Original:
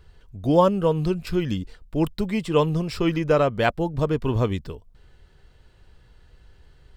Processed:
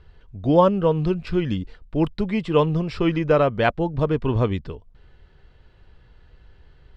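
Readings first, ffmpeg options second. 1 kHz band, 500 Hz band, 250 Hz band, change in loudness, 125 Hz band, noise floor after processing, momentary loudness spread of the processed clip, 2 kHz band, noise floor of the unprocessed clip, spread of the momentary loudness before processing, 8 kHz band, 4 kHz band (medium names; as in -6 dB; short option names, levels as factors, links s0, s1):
+1.5 dB, +1.5 dB, +1.5 dB, +1.5 dB, +1.5 dB, -53 dBFS, 12 LU, +1.0 dB, -55 dBFS, 12 LU, no reading, -0.5 dB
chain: -af "lowpass=3700,volume=1.19"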